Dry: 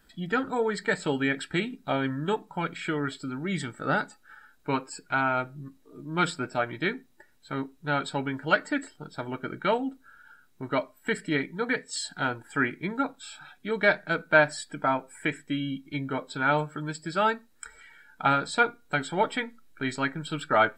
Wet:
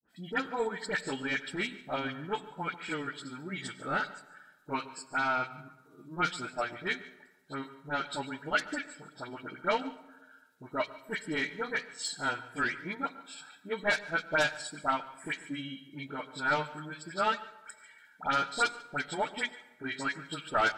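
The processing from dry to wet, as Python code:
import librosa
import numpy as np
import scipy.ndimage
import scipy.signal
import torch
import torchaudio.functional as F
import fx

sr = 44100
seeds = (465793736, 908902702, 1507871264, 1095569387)

p1 = scipy.signal.sosfilt(scipy.signal.butter(2, 110.0, 'highpass', fs=sr, output='sos'), x)
p2 = fx.tilt_shelf(p1, sr, db=-3.5, hz=870.0)
p3 = fx.fold_sine(p2, sr, drive_db=12, ceiling_db=-6.5)
p4 = p2 + (p3 * librosa.db_to_amplitude(-12.0))
p5 = fx.granulator(p4, sr, seeds[0], grain_ms=129.0, per_s=15.0, spray_ms=13.0, spread_st=0)
p6 = fx.dispersion(p5, sr, late='highs', ms=72.0, hz=1700.0)
p7 = p6 + fx.echo_single(p6, sr, ms=143, db=-17.0, dry=0)
p8 = fx.rev_plate(p7, sr, seeds[1], rt60_s=1.2, hf_ratio=0.55, predelay_ms=80, drr_db=15.0)
p9 = fx.upward_expand(p8, sr, threshold_db=-26.0, expansion=1.5)
y = p9 * librosa.db_to_amplitude(-8.0)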